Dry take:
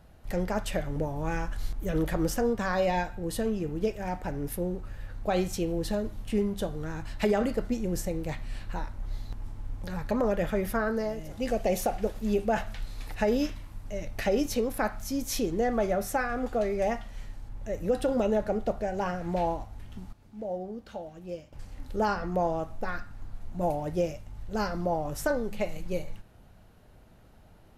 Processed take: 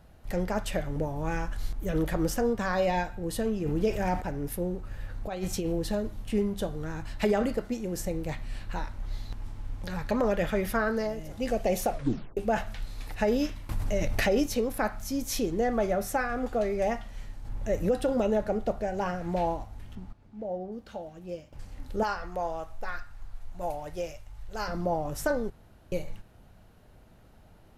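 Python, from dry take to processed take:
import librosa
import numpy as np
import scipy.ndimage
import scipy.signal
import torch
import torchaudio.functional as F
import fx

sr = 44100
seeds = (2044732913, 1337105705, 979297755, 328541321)

y = fx.env_flatten(x, sr, amount_pct=50, at=(3.65, 4.2), fade=0.02)
y = fx.over_compress(y, sr, threshold_db=-29.0, ratio=-0.5, at=(4.91, 5.79))
y = fx.low_shelf(y, sr, hz=140.0, db=-10.0, at=(7.58, 8.0))
y = fx.peak_eq(y, sr, hz=3300.0, db=4.5, octaves=2.5, at=(8.71, 11.07))
y = fx.env_flatten(y, sr, amount_pct=70, at=(13.69, 14.44))
y = fx.lowpass(y, sr, hz=2600.0, slope=6, at=(19.95, 20.72))
y = fx.peak_eq(y, sr, hz=210.0, db=-13.5, octaves=2.2, at=(22.03, 24.68))
y = fx.edit(y, sr, fx.tape_stop(start_s=11.9, length_s=0.47),
    fx.clip_gain(start_s=17.45, length_s=0.44, db=5.0),
    fx.room_tone_fill(start_s=25.5, length_s=0.42), tone=tone)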